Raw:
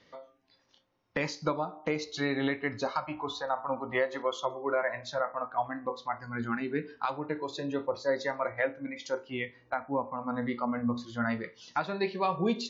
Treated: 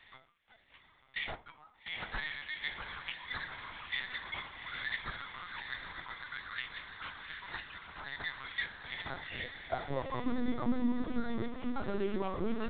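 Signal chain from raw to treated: one-sided wavefolder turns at -22 dBFS; peaking EQ 89 Hz +10.5 dB 1.3 oct; peak limiter -25.5 dBFS, peak gain reduction 9 dB; compression 2:1, threshold -39 dBFS, peak gain reduction 6 dB; high-pass sweep 2 kHz -> 250 Hz, 8.60–10.26 s; echo that smears into a reverb 797 ms, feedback 56%, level -6 dB; careless resampling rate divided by 8×, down none, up hold; LPC vocoder at 8 kHz pitch kept; 1.35–3.53 s: three bands expanded up and down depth 70%; trim +2 dB

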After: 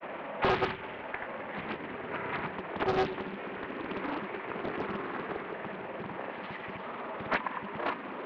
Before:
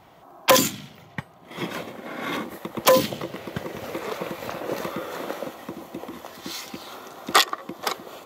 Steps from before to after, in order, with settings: one-bit delta coder 64 kbps, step -31.5 dBFS; dynamic bell 670 Hz, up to -6 dB, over -37 dBFS, Q 1.1; granulator 100 ms, grains 20 per s, spray 100 ms, pitch spread up and down by 0 st; saturation -21.5 dBFS, distortion -10 dB; mistuned SSB -140 Hz 360–2600 Hz; on a send: two-band feedback delay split 600 Hz, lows 101 ms, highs 198 ms, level -15 dB; on the sum: loudspeaker Doppler distortion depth 0.72 ms; trim +1 dB

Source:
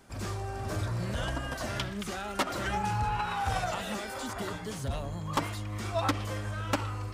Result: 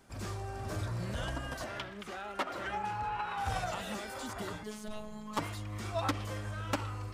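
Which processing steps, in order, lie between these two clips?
1.64–3.38 s: tone controls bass -10 dB, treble -10 dB; 4.63–5.38 s: robot voice 213 Hz; trim -4 dB

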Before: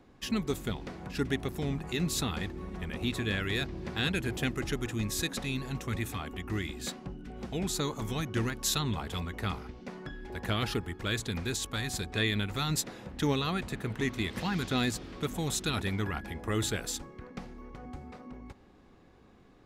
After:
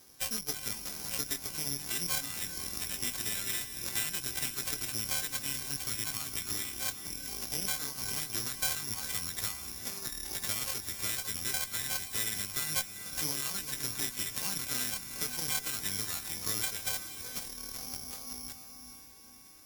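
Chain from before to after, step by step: partials quantised in pitch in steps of 2 st; compression 4:1, threshold -41 dBFS, peak gain reduction 19 dB; careless resampling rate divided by 8×, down none, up zero stuff; echo that smears into a reverb 455 ms, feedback 40%, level -6 dB; Chebyshev shaper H 7 -23 dB, 8 -23 dB, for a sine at -8 dBFS

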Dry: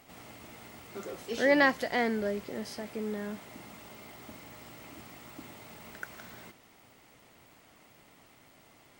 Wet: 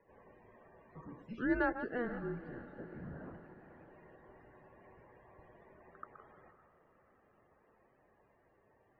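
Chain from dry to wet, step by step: chunks repeated in reverse 115 ms, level -10 dB; loudest bins only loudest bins 64; 2.58–3.91 s: LPC vocoder at 8 kHz whisper; tilt EQ +3 dB/octave; frequency shift -240 Hz; low-pass 1 kHz 12 dB/octave; bass shelf 63 Hz -11.5 dB; on a send: echo that smears into a reverb 530 ms, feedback 54%, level -15.5 dB; on the sum: trim -4.5 dB

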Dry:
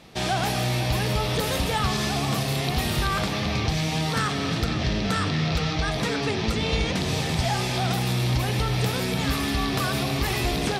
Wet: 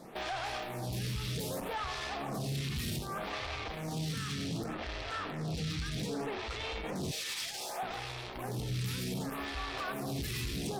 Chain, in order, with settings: 2.09–2.75 s: treble shelf 9.2 kHz -7.5 dB; 7.11–7.83 s: high-pass 570 Hz 24 dB/octave; peak limiter -23.5 dBFS, peak gain reduction 11 dB; saturation -32.5 dBFS, distortion -12 dB; lamp-driven phase shifter 0.65 Hz; trim +2.5 dB

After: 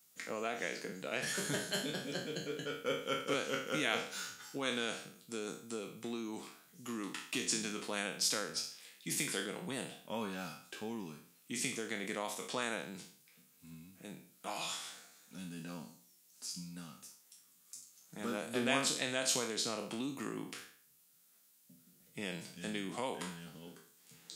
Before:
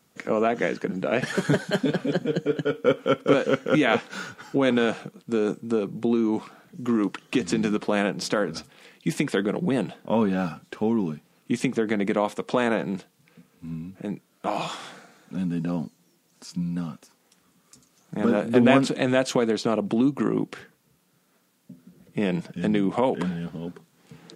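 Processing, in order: spectral sustain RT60 0.52 s; pre-emphasis filter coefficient 0.9

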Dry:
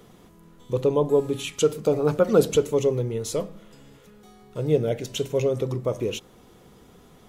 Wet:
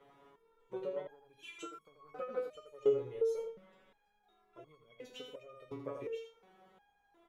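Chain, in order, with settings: Chebyshev shaper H 3 -15 dB, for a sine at -6 dBFS; on a send: delay 82 ms -7.5 dB; on the sum: compression 12:1, threshold -27 dBFS, peak gain reduction 15 dB; three-band isolator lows -15 dB, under 430 Hz, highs -20 dB, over 2.6 kHz; 2.67–3.35 s: comb 2.4 ms, depth 58%; dynamic bell 1 kHz, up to -6 dB, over -51 dBFS, Q 0.74; resonator arpeggio 2.8 Hz 140–1100 Hz; trim +12.5 dB

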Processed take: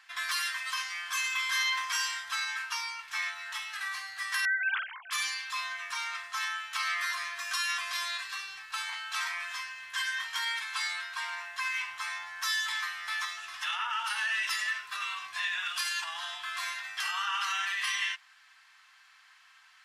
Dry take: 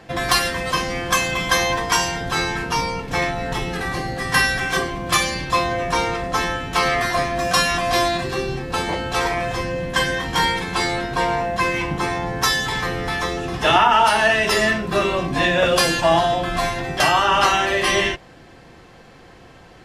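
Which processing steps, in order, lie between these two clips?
4.45–5.11 s: formants replaced by sine waves; peak limiter -13 dBFS, peak gain reduction 11 dB; inverse Chebyshev high-pass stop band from 590 Hz, stop band 40 dB; 1.21–2.32 s: flutter echo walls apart 5.1 m, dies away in 0.31 s; trim -7 dB

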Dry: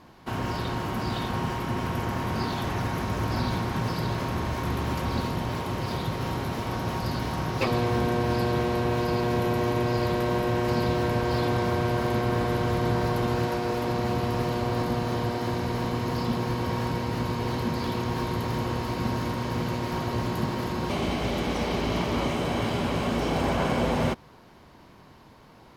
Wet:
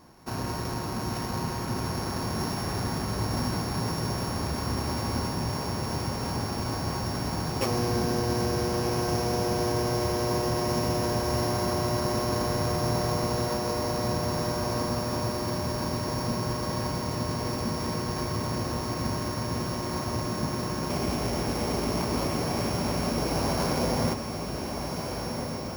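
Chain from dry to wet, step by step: sorted samples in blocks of 8 samples; peaking EQ 3.4 kHz -7 dB 0.43 oct; echo that smears into a reverb 1418 ms, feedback 63%, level -6 dB; trim -2 dB

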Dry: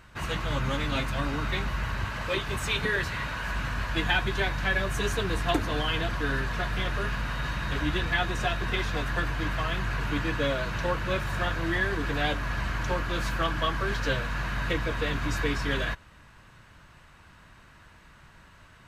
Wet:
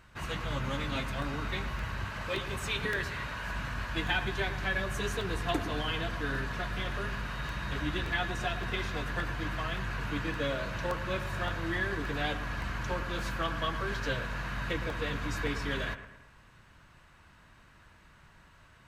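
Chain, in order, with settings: bucket-brigade echo 112 ms, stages 2048, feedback 45%, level -12 dB; crackling interface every 0.57 s, samples 64, repeat, from 0.65 s; trim -5 dB

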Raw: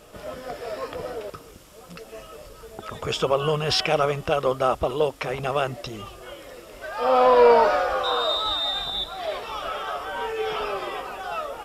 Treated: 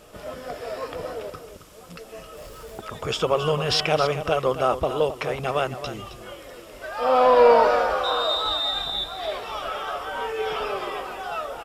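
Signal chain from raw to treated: 2.37–2.81 s: jump at every zero crossing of -45 dBFS; delay 268 ms -11.5 dB

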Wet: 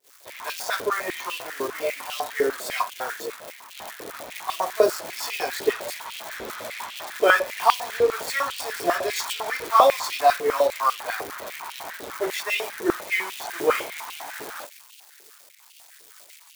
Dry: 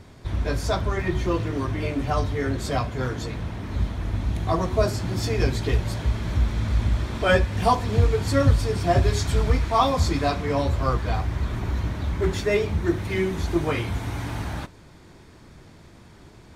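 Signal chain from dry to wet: zero-crossing glitches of -23.5 dBFS; expander -24 dBFS; step-sequenced high-pass 10 Hz 440–2800 Hz; trim -1 dB

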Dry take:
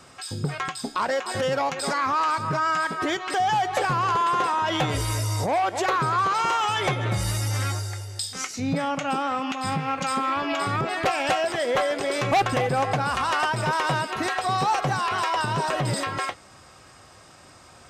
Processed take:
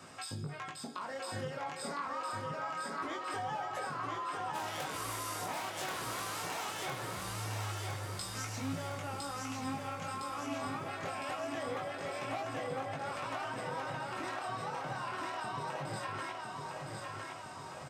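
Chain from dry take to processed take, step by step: 4.53–6.85 s: spectral contrast reduction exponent 0.46; high-pass 82 Hz; peaking EQ 5 kHz -3 dB 2 oct; hum notches 60/120/180/240/300/360/420/480/540 Hz; compression 6:1, threshold -38 dBFS, peak gain reduction 18 dB; chorus 0.24 Hz, delay 18.5 ms, depth 6.1 ms; feedback delay 1009 ms, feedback 57%, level -3.5 dB; reverberation RT60 0.90 s, pre-delay 6 ms, DRR 12 dB; trim +1 dB

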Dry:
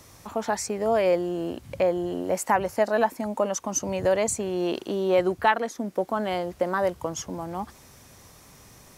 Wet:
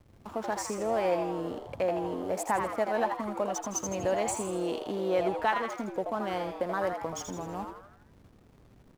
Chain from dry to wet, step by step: in parallel at -2 dB: compression, threshold -33 dBFS, peak gain reduction 16.5 dB; on the sum: hysteresis with a dead band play -33.5 dBFS; frequency-shifting echo 81 ms, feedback 49%, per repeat +130 Hz, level -6 dB; trim -8 dB

